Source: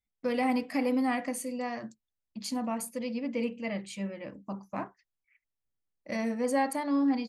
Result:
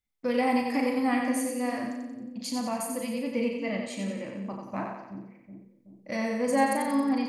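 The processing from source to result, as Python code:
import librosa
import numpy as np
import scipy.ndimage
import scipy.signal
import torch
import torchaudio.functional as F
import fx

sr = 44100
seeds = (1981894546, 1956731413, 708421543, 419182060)

y = fx.doubler(x, sr, ms=37.0, db=-6.5)
y = fx.echo_split(y, sr, split_hz=390.0, low_ms=375, high_ms=90, feedback_pct=52, wet_db=-4.5)
y = F.gain(torch.from_numpy(y), 1.0).numpy()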